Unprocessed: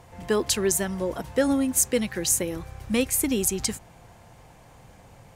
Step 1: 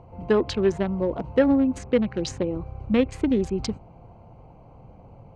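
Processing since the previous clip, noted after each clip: local Wiener filter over 25 samples; low-pass that closes with the level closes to 2.4 kHz, closed at -20 dBFS; low-pass 4.7 kHz 12 dB/octave; trim +4 dB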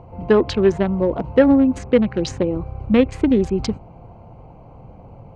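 treble shelf 5.7 kHz -7.5 dB; trim +6 dB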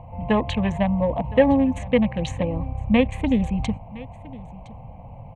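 static phaser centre 1.4 kHz, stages 6; delay 1013 ms -20 dB; trim +2.5 dB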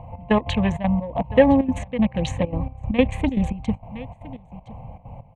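trance gate "xx..x.xxxx." 196 bpm -12 dB; trim +2 dB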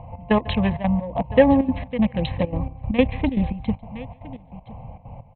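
brick-wall FIR low-pass 4.2 kHz; delay 146 ms -22.5 dB

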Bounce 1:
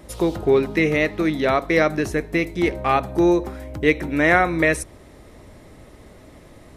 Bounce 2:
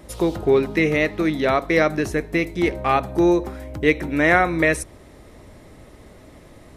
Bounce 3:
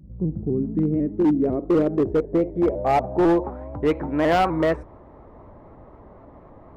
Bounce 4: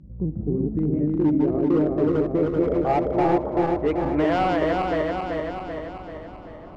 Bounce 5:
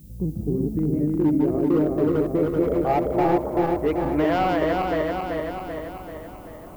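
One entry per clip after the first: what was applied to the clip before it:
no audible change
low-pass sweep 170 Hz -> 1 kHz, 0.08–3.76 s; hard clipper -12 dBFS, distortion -14 dB; vibrato with a chosen wave saw up 4 Hz, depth 100 cents; trim -2 dB
backward echo that repeats 193 ms, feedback 73%, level -1.5 dB; compression 1.5:1, threshold -24 dBFS, peak gain reduction 5 dB; distance through air 68 m
added noise violet -56 dBFS

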